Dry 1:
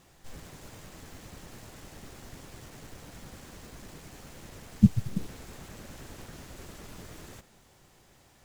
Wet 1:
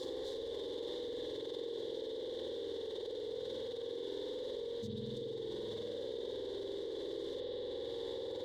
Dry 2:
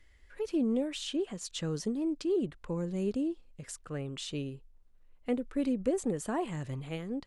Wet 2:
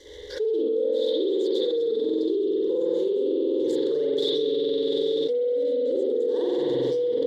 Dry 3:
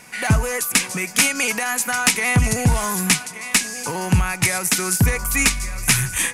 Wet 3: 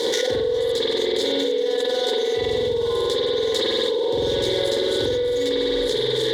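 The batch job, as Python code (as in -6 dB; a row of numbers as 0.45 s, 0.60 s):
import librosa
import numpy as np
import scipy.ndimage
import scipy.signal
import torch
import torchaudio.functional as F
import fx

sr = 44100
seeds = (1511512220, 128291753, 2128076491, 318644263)

y = scipy.signal.medfilt(x, 15)
y = fx.tilt_shelf(y, sr, db=-4.5, hz=1300.0)
y = fx.rider(y, sr, range_db=3, speed_s=0.5)
y = fx.double_bandpass(y, sr, hz=1300.0, octaves=2.9)
y = fx.fixed_phaser(y, sr, hz=680.0, stages=6)
y = fx.echo_diffused(y, sr, ms=783, feedback_pct=42, wet_db=-16.0)
y = fx.rev_spring(y, sr, rt60_s=2.0, pass_ms=(47,), chirp_ms=20, drr_db=-9.0)
y = fx.env_flatten(y, sr, amount_pct=100)
y = y * 10.0 ** (6.5 / 20.0)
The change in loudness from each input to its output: -9.5 LU, +9.5 LU, -3.0 LU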